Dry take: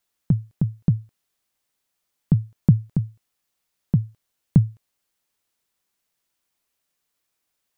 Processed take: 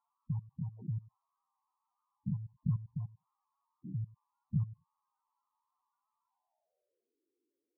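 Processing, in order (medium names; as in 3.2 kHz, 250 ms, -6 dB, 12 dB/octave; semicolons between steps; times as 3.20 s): spectrogram pixelated in time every 100 ms; band-pass sweep 1 kHz -> 350 Hz, 6.23–7.18 s; loudest bins only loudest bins 8; trim +13.5 dB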